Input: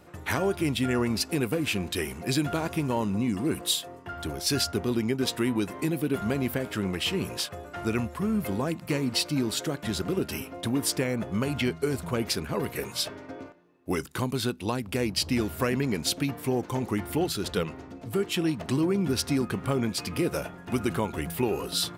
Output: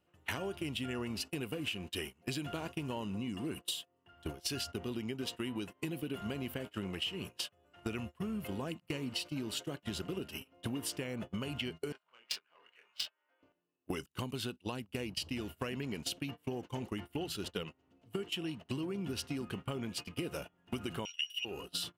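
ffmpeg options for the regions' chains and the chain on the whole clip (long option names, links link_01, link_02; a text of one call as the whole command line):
ffmpeg -i in.wav -filter_complex "[0:a]asettb=1/sr,asplit=3[link_01][link_02][link_03];[link_01]atrim=end=11.924[link_04];[link_02]atrim=start=11.92:end=13.43,asetpts=PTS-STARTPTS,afade=type=in:duration=0.004:curve=qsin,afade=type=out:start_time=1.506:duration=0.004:curve=qsin,highpass=1200,adynamicsmooth=sensitivity=3.5:basefreq=1900,asplit=2[link_05][link_06];[link_06]adelay=25,volume=-3dB[link_07];[link_05][link_07]amix=inputs=2:normalize=0,atrim=end_sample=66591[link_08];[link_03]atrim=start=13.426[link_09];[link_04][link_08]acrossfade=duration=0.004:curve1=hsin:curve2=qsin[link_10];[link_10][link_09]acrossfade=duration=0.004:curve1=qsin:curve2=hsin,asettb=1/sr,asplit=3[link_11][link_12][link_13];[link_11]atrim=end=21.054[link_14];[link_12]atrim=start=21.05:end=21.45,asetpts=PTS-STARTPTS,afade=type=in:duration=0.004:curve=qsin,afade=type=out:start_time=0.396:duration=0.004:curve=qsin,highpass=frequency=2900:width_type=q:width=14,aeval=exprs='val(0)+0.0141*sin(2*PI*5700*n/s)':channel_layout=same[link_15];[link_13]atrim=start=21.446[link_16];[link_14][link_15]acrossfade=duration=0.004:curve1=hsin:curve2=qsin[link_17];[link_17][link_16]acrossfade=duration=0.004:curve1=qsin:curve2=hsin,agate=range=-28dB:threshold=-31dB:ratio=16:detection=peak,equalizer=frequency=2900:width_type=o:width=0.22:gain=14.5,acompressor=threshold=-41dB:ratio=6,volume=4dB" out.wav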